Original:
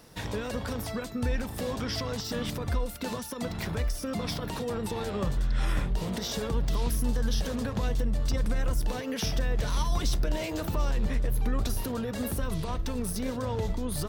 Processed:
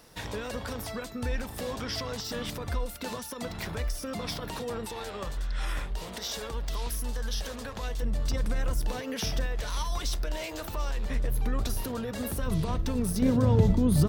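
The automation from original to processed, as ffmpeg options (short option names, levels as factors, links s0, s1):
-af "asetnsamples=n=441:p=0,asendcmd='4.85 equalizer g -13.5;8.02 equalizer g -3;9.46 equalizer g -12;11.1 equalizer g -2.5;12.46 equalizer g 5;13.22 equalizer g 13.5',equalizer=f=150:t=o:w=2.7:g=-5"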